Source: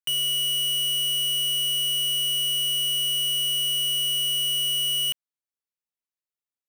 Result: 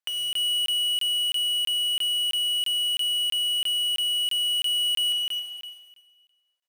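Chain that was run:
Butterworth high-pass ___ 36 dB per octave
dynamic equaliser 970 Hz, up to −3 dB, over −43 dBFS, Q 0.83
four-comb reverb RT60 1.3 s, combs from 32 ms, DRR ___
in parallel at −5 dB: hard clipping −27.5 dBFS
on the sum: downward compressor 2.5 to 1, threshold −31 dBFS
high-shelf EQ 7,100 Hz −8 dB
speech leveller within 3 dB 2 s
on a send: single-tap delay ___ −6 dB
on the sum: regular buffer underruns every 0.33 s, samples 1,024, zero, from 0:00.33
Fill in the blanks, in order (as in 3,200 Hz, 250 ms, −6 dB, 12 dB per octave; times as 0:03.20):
480 Hz, 4.5 dB, 271 ms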